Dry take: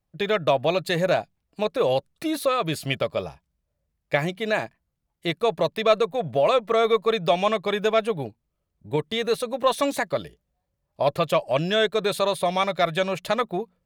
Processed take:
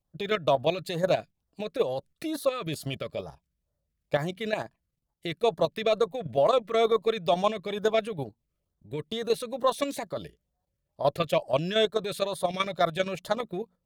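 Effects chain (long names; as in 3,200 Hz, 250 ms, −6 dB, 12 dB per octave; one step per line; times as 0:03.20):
output level in coarse steps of 10 dB
auto-filter notch sine 2.2 Hz 770–2,600 Hz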